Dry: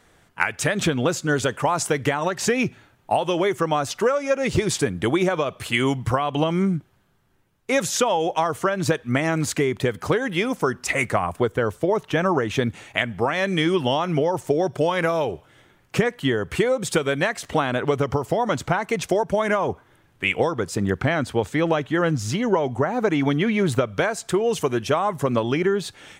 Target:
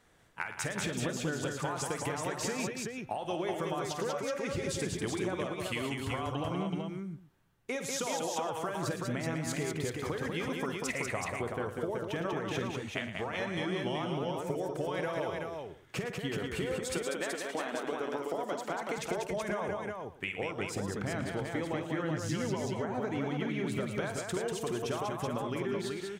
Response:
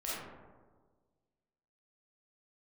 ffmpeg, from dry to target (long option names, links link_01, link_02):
-filter_complex "[0:a]asettb=1/sr,asplit=3[link_01][link_02][link_03];[link_01]atrim=end=16.824[link_04];[link_02]atrim=start=16.82:end=18.98,asetpts=PTS-STARTPTS,afade=type=in:duration=0.004:curve=qsin,afade=type=out:start_time=2.156:duration=0.004:curve=qsin,highpass=frequency=230:width=0.5412,highpass=frequency=230:width=1.3066[link_05];[link_03]atrim=start=18.976[link_06];[link_04][link_05]acrossfade=duration=0.004:curve1=hsin:curve2=qsin[link_07];[link_07][link_06]acrossfade=duration=0.004:curve1=qsin:curve2=hsin,acompressor=threshold=-24dB:ratio=6,aecho=1:1:50|111|192|377|496:0.266|0.282|0.596|0.631|0.1,volume=-9dB"